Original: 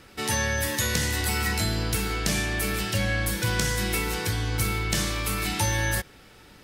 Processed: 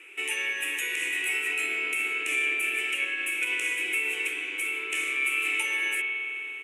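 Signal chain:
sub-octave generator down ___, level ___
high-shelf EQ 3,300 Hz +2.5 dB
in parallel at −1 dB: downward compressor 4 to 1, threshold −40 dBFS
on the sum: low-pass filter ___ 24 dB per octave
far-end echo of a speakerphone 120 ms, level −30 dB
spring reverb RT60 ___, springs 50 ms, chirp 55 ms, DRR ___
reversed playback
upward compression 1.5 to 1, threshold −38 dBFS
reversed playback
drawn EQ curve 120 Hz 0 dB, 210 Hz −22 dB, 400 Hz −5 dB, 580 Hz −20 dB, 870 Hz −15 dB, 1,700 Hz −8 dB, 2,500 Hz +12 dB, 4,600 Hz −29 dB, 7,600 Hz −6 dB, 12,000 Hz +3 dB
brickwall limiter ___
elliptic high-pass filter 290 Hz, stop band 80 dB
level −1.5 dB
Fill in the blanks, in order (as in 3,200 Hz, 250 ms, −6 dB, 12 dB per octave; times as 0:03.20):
1 octave, −1 dB, 9,400 Hz, 3.6 s, 2 dB, −13.5 dBFS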